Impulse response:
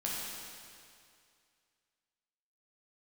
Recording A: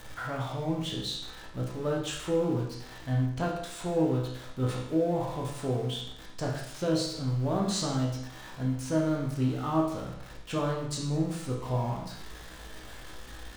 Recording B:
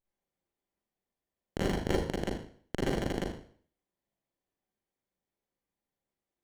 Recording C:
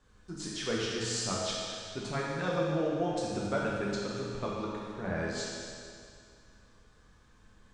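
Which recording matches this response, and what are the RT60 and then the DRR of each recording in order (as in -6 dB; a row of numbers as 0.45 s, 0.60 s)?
C; 0.70 s, 0.50 s, 2.3 s; -2.0 dB, -7.0 dB, -5.5 dB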